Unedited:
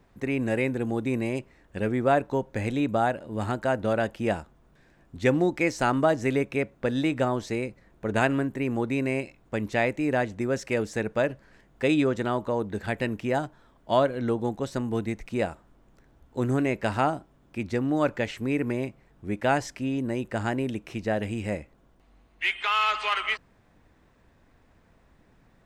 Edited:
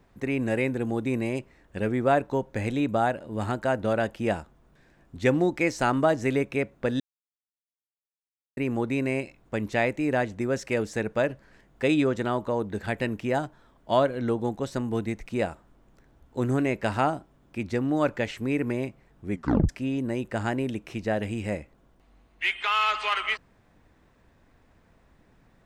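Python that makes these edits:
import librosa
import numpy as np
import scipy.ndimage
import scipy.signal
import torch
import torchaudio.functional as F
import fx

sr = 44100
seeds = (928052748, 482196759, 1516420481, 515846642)

y = fx.edit(x, sr, fx.silence(start_s=7.0, length_s=1.57),
    fx.tape_stop(start_s=19.32, length_s=0.37), tone=tone)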